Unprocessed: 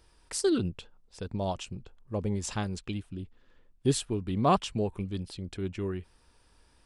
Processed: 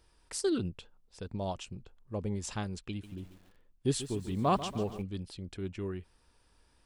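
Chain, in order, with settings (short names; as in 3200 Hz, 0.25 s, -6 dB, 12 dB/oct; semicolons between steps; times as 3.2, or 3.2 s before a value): 2.89–5.02 lo-fi delay 0.141 s, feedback 55%, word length 8-bit, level -12.5 dB; gain -4 dB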